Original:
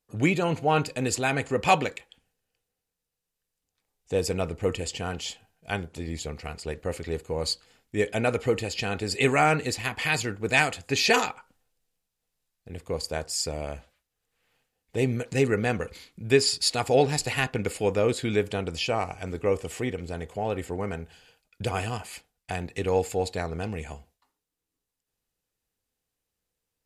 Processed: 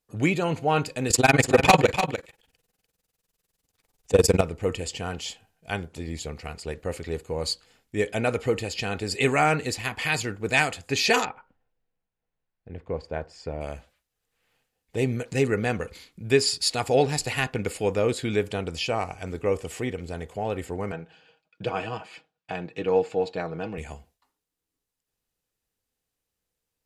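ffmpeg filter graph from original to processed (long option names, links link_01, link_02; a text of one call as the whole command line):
ffmpeg -i in.wav -filter_complex "[0:a]asettb=1/sr,asplit=3[link_01][link_02][link_03];[link_01]atrim=end=1.104[link_04];[link_02]atrim=start=1.1:end=4.41,asetpts=PTS-STARTPTS,afade=type=in:duration=0.004:curve=qsin,afade=type=out:start_time=3.306:duration=0.004:curve=qsin,tremolo=f=20:d=0.947,aeval=exprs='0.398*sin(PI/2*2.51*val(0)/0.398)':channel_layout=same,aecho=1:1:295:0.376,atrim=end_sample=145971[link_05];[link_03]atrim=start=4.406[link_06];[link_04][link_05]acrossfade=duration=0.004:curve1=hsin:curve2=qsin[link_07];[link_07][link_06]acrossfade=duration=0.004:curve1=qsin:curve2=hsin,asettb=1/sr,asplit=3[link_08][link_09][link_10];[link_08]atrim=end=11.254[link_11];[link_09]atrim=start=11.25:end=13.61,asetpts=PTS-STARTPTS,afade=type=in:duration=0.004:curve=qsin,afade=type=out:start_time=2.356:duration=0.004:curve=qsin,lowpass=1900,bandreject=frequency=1200:width=12[link_12];[link_10]atrim=start=13.606[link_13];[link_11][link_12]acrossfade=duration=0.004:curve1=hsin:curve2=qsin[link_14];[link_14][link_13]acrossfade=duration=0.004:curve1=qsin:curve2=hsin,asettb=1/sr,asplit=3[link_15][link_16][link_17];[link_15]atrim=end=20.924[link_18];[link_16]atrim=start=20.92:end=23.78,asetpts=PTS-STARTPTS,afade=type=in:duration=0.004:curve=qsin,afade=type=out:start_time=2.856:duration=0.004:curve=qsin,highpass=150,lowpass=3200,bandreject=frequency=2000:width=8.4,aecho=1:1:6.3:0.49,atrim=end_sample=126126[link_19];[link_17]atrim=start=23.776[link_20];[link_18][link_19]acrossfade=duration=0.004:curve1=hsin:curve2=qsin[link_21];[link_21][link_20]acrossfade=duration=0.004:curve1=qsin:curve2=hsin" out.wav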